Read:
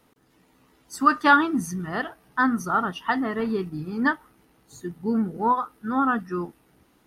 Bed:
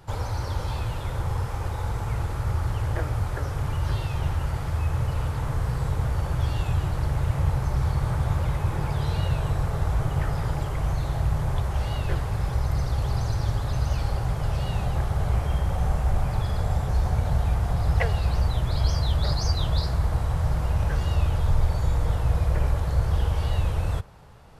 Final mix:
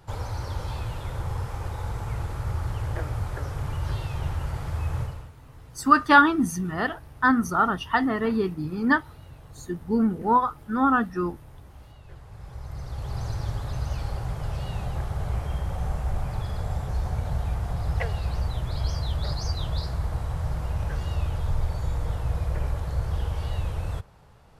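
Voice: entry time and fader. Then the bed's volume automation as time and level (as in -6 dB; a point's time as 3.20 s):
4.85 s, +1.5 dB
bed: 5.01 s -3 dB
5.35 s -21.5 dB
12.01 s -21.5 dB
13.25 s -4.5 dB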